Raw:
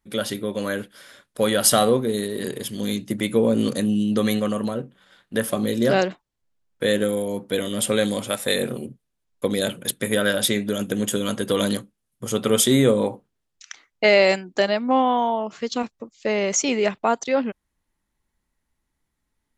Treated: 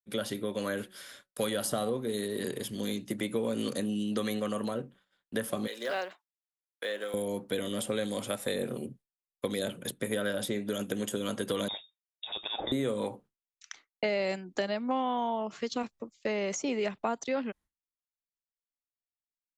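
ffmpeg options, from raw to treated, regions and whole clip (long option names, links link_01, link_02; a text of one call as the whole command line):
ffmpeg -i in.wav -filter_complex "[0:a]asettb=1/sr,asplit=3[link_01][link_02][link_03];[link_01]atrim=end=0.774[link_04];[link_02]atrim=start=0.77:end=1.9,asetpts=PTS-STARTPTS,afade=type=in:duration=0.004:curve=qsin,afade=type=out:start_time=1.126:duration=0.004:curve=qsin,highshelf=frequency=2500:gain=6.5,bandreject=frequency=186.7:width_type=h:width=4,bandreject=frequency=373.4:width_type=h:width=4,bandreject=frequency=560.1:width_type=h:width=4,bandreject=frequency=746.8:width_type=h:width=4,bandreject=frequency=933.5:width_type=h:width=4,bandreject=frequency=1120.2:width_type=h:width=4,bandreject=frequency=1306.9:width_type=h:width=4,bandreject=frequency=1493.6:width_type=h:width=4,bandreject=frequency=1680.3:width_type=h:width=4,bandreject=frequency=1867:width_type=h:width=4[link_05];[link_03]atrim=start=1.896[link_06];[link_04][link_05]acrossfade=duration=0.004:curve1=hsin:curve2=qsin[link_07];[link_07][link_06]acrossfade=duration=0.004:curve1=qsin:curve2=hsin,asettb=1/sr,asplit=3[link_08][link_09][link_10];[link_08]atrim=end=5.674[link_11];[link_09]atrim=start=5.67:end=7.14,asetpts=PTS-STARTPTS,afade=type=in:duration=0.004:curve=qsin,afade=type=out:start_time=1.466:duration=0.004:curve=qsin,highpass=810,acrossover=split=4800[link_12][link_13];[link_13]acompressor=threshold=-46dB:ratio=4:attack=1:release=60[link_14];[link_12][link_14]amix=inputs=2:normalize=0,acrusher=bits=7:mode=log:mix=0:aa=0.000001[link_15];[link_10]atrim=start=7.136[link_16];[link_11][link_15]acrossfade=duration=0.004:curve1=hsin:curve2=qsin[link_17];[link_17][link_16]acrossfade=duration=0.004:curve1=qsin:curve2=hsin,asettb=1/sr,asplit=3[link_18][link_19][link_20];[link_18]atrim=end=11.684[link_21];[link_19]atrim=start=11.68:end=12.72,asetpts=PTS-STARTPTS,afade=type=in:duration=0.004:curve=qsin,afade=type=out:start_time=1.036:duration=0.004:curve=qsin,highpass=170,lowpass=frequency=3300:width_type=q:width=0.5098,lowpass=frequency=3300:width_type=q:width=0.6013,lowpass=frequency=3300:width_type=q:width=0.9,lowpass=frequency=3300:width_type=q:width=2.563,afreqshift=-3900[link_22];[link_20]atrim=start=12.716[link_23];[link_21][link_22]acrossfade=duration=0.004:curve1=hsin:curve2=qsin[link_24];[link_24][link_23]acrossfade=duration=0.004:curve1=qsin:curve2=hsin,agate=range=-33dB:threshold=-42dB:ratio=3:detection=peak,acrossover=split=270|1100[link_25][link_26][link_27];[link_25]acompressor=threshold=-34dB:ratio=4[link_28];[link_26]acompressor=threshold=-27dB:ratio=4[link_29];[link_27]acompressor=threshold=-33dB:ratio=4[link_30];[link_28][link_29][link_30]amix=inputs=3:normalize=0,volume=-4.5dB" out.wav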